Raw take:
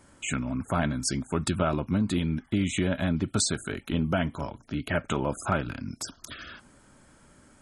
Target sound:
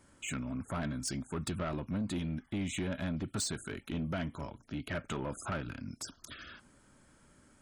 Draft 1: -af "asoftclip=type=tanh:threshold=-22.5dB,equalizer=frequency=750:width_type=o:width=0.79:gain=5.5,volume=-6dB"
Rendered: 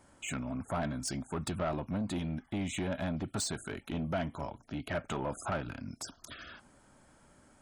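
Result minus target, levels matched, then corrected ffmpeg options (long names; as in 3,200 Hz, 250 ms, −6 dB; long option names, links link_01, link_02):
1,000 Hz band +3.0 dB
-af "asoftclip=type=tanh:threshold=-22.5dB,equalizer=frequency=750:width_type=o:width=0.79:gain=-2.5,volume=-6dB"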